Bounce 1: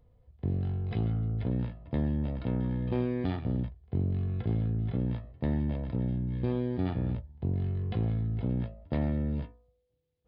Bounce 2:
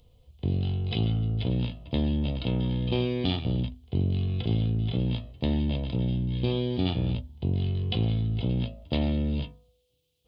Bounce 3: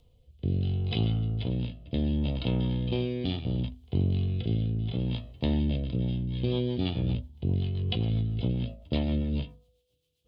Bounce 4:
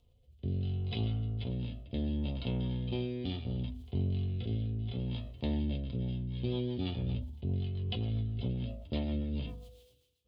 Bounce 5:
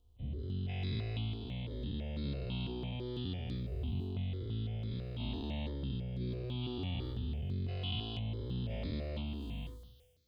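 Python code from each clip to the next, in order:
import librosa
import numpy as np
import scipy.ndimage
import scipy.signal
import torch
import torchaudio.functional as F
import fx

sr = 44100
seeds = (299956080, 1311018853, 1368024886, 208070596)

y1 = fx.high_shelf_res(x, sr, hz=2300.0, db=9.5, q=3.0)
y1 = fx.hum_notches(y1, sr, base_hz=50, count=5)
y1 = y1 * librosa.db_to_amplitude(4.0)
y2 = fx.rotary_switch(y1, sr, hz=0.7, then_hz=7.5, switch_at_s=5.77)
y3 = fx.notch_comb(y2, sr, f0_hz=160.0)
y3 = fx.sustainer(y3, sr, db_per_s=61.0)
y3 = y3 * librosa.db_to_amplitude(-5.5)
y4 = fx.spec_dilate(y3, sr, span_ms=480)
y4 = fx.phaser_held(y4, sr, hz=6.0, low_hz=560.0, high_hz=2900.0)
y4 = y4 * librosa.db_to_amplitude(-6.0)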